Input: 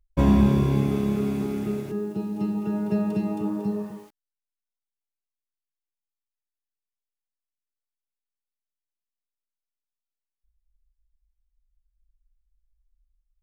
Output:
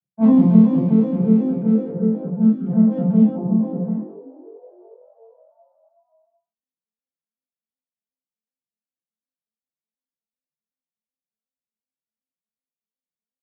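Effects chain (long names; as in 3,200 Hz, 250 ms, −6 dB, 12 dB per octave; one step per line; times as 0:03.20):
vocoder with an arpeggio as carrier major triad, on F3, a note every 124 ms
time-frequency box erased 0:03.31–0:03.61, 1,300–4,800 Hz
echo with shifted repeats 471 ms, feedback 57%, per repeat +92 Hz, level −20 dB
gain on a spectral selection 0:02.48–0:02.68, 450–1,100 Hz −18 dB
high-shelf EQ 4,100 Hz −12 dB
convolution reverb RT60 0.25 s, pre-delay 31 ms, DRR −4.5 dB
low-pass that shuts in the quiet parts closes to 650 Hz, open at −10.5 dBFS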